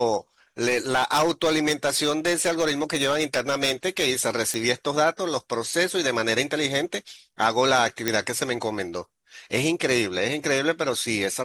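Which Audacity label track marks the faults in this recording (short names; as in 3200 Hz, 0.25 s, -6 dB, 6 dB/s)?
0.660000	4.060000	clipped -16 dBFS
4.540000	4.540000	pop
8.080000	8.080000	pop -7 dBFS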